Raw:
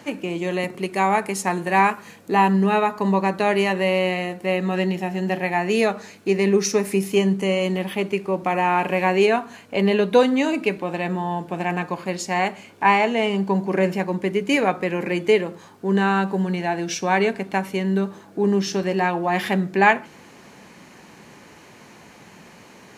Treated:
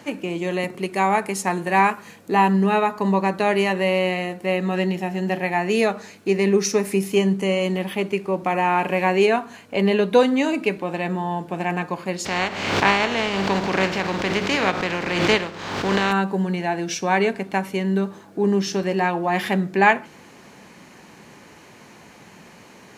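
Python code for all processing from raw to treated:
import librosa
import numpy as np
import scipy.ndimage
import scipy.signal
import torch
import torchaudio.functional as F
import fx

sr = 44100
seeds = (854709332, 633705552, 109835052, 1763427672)

y = fx.spec_flatten(x, sr, power=0.42, at=(12.24, 16.11), fade=0.02)
y = fx.air_absorb(y, sr, metres=180.0, at=(12.24, 16.11), fade=0.02)
y = fx.pre_swell(y, sr, db_per_s=47.0, at=(12.24, 16.11), fade=0.02)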